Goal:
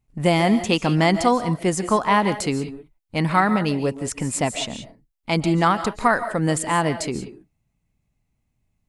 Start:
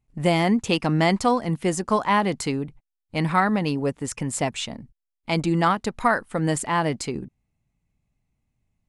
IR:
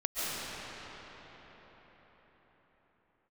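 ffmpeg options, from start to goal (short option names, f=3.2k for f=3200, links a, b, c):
-filter_complex "[0:a]asplit=2[a][b];[1:a]atrim=start_sample=2205,afade=t=out:st=0.24:d=0.01,atrim=end_sample=11025,highshelf=f=8.4k:g=7.5[c];[b][c]afir=irnorm=-1:irlink=0,volume=-10.5dB[d];[a][d]amix=inputs=2:normalize=0"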